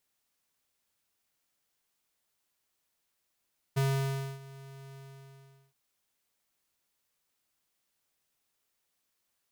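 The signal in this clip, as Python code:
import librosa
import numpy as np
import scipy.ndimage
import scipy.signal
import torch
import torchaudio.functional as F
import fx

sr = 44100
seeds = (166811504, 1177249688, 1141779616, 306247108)

y = fx.adsr_tone(sr, wave='square', hz=136.0, attack_ms=16.0, decay_ms=612.0, sustain_db=-21.5, held_s=1.2, release_ms=774.0, level_db=-26.5)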